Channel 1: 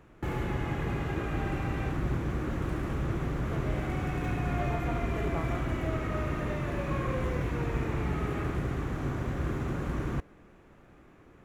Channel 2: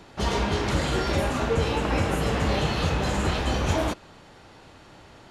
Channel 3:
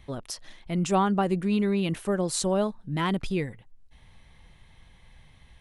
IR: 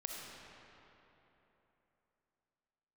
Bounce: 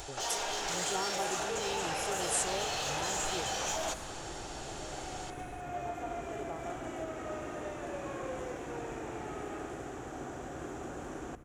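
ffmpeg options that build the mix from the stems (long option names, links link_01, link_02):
-filter_complex "[0:a]adelay=1150,volume=-5dB,asplit=2[link_01][link_02];[link_02]volume=-13dB[link_03];[1:a]equalizer=frequency=7000:width=0.46:gain=7,asplit=2[link_04][link_05];[link_05]highpass=frequency=720:poles=1,volume=20dB,asoftclip=type=tanh:threshold=-9.5dB[link_06];[link_04][link_06]amix=inputs=2:normalize=0,lowpass=frequency=6400:poles=1,volume=-6dB,volume=-11dB,asplit=2[link_07][link_08];[link_08]volume=-13.5dB[link_09];[2:a]acompressor=mode=upward:threshold=-26dB:ratio=2.5,aecho=1:1:2.3:0.87,volume=-16dB,asplit=2[link_10][link_11];[link_11]apad=whole_len=555598[link_12];[link_01][link_12]sidechaincompress=threshold=-50dB:ratio=8:attack=16:release=1390[link_13];[link_13][link_07]amix=inputs=2:normalize=0,highpass=frequency=250:width=0.5412,highpass=frequency=250:width=1.3066,equalizer=frequency=750:width_type=q:width=4:gain=8,equalizer=frequency=1100:width_type=q:width=4:gain=-7,equalizer=frequency=2100:width_type=q:width=4:gain=-7,equalizer=frequency=3300:width_type=q:width=4:gain=3,lowpass=frequency=8600:width=0.5412,lowpass=frequency=8600:width=1.3066,alimiter=level_in=5dB:limit=-24dB:level=0:latency=1:release=194,volume=-5dB,volume=0dB[link_14];[3:a]atrim=start_sample=2205[link_15];[link_03][link_09]amix=inputs=2:normalize=0[link_16];[link_16][link_15]afir=irnorm=-1:irlink=0[link_17];[link_10][link_14][link_17]amix=inputs=3:normalize=0,highshelf=frequency=5600:width_type=q:width=1.5:gain=10.5"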